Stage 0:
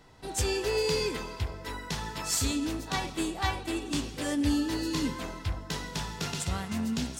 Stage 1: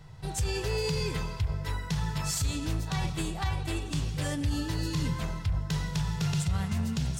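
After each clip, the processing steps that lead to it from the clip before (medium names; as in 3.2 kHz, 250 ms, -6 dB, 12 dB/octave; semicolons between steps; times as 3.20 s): resonant low shelf 190 Hz +9 dB, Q 3; peak limiter -21 dBFS, peak gain reduction 11.5 dB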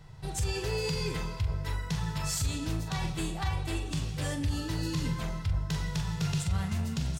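doubling 43 ms -9 dB; trim -1.5 dB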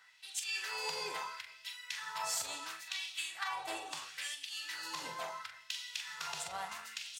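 LFO high-pass sine 0.73 Hz 690–3000 Hz; trim -3 dB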